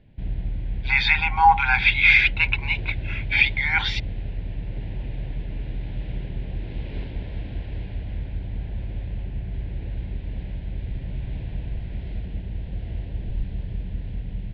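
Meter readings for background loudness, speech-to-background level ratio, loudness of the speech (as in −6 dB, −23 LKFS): −32.5 LKFS, 14.0 dB, −18.5 LKFS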